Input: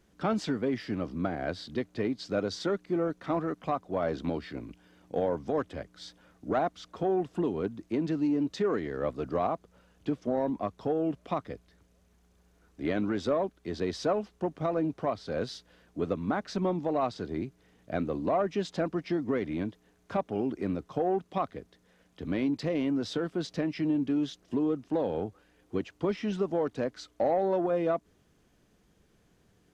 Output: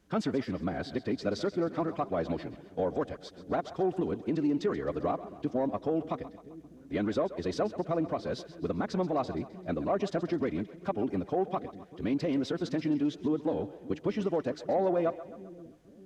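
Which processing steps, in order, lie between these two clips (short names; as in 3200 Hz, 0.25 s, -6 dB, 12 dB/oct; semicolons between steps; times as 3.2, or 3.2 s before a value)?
time stretch by phase-locked vocoder 0.54×; split-band echo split 360 Hz, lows 0.598 s, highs 0.131 s, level -14.5 dB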